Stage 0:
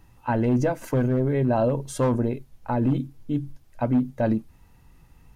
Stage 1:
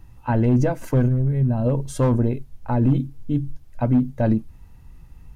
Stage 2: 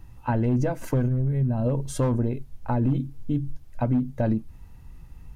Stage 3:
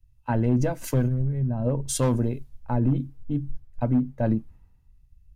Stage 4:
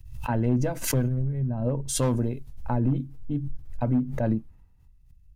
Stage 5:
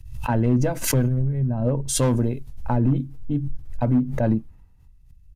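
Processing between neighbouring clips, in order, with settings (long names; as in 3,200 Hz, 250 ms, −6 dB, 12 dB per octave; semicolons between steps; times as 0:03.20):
gain on a spectral selection 0:01.08–0:01.65, 240–7,700 Hz −10 dB; low-shelf EQ 150 Hz +11 dB
downward compressor 2 to 1, threshold −23 dBFS, peak gain reduction 6 dB
multiband upward and downward expander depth 100%
background raised ahead of every attack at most 73 dB per second; level −2 dB
in parallel at −3.5 dB: gain into a clipping stage and back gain 17 dB; on the sum: downsampling to 32,000 Hz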